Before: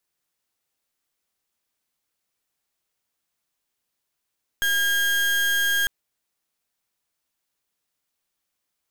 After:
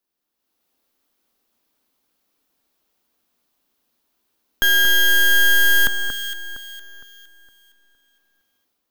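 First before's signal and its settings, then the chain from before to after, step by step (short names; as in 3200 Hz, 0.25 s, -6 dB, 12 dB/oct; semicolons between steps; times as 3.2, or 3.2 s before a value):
pulse 1620 Hz, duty 32% -21.5 dBFS 1.25 s
graphic EQ 125/250/2000/8000 Hz -10/+8/-5/-8 dB; AGC gain up to 10 dB; on a send: echo with dull and thin repeats by turns 0.231 s, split 1800 Hz, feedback 59%, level -6 dB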